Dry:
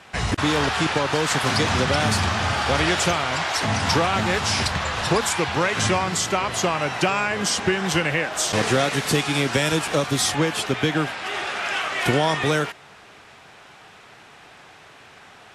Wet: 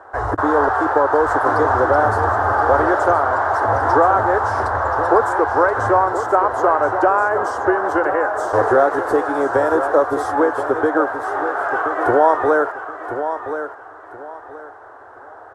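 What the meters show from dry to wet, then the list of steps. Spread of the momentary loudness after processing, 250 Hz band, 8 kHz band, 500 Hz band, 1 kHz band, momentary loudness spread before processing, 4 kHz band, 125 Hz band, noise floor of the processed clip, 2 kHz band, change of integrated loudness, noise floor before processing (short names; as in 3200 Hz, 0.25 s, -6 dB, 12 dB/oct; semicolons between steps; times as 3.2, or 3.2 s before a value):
9 LU, +1.5 dB, under -15 dB, +8.5 dB, +9.5 dB, 3 LU, under -20 dB, -5.0 dB, -40 dBFS, +1.5 dB, +4.5 dB, -47 dBFS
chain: EQ curve 110 Hz 0 dB, 160 Hz -28 dB, 290 Hz +3 dB, 430 Hz +9 dB, 880 Hz +11 dB, 1600 Hz +6 dB, 2400 Hz -24 dB, 10000 Hz -15 dB; on a send: feedback echo 1.026 s, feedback 25%, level -9.5 dB; on the sum: gain -1 dB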